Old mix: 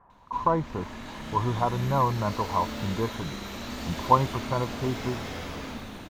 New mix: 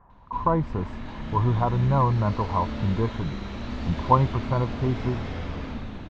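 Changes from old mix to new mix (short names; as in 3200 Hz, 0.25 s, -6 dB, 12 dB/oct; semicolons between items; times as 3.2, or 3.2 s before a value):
background: add air absorption 170 m; master: add low shelf 160 Hz +10.5 dB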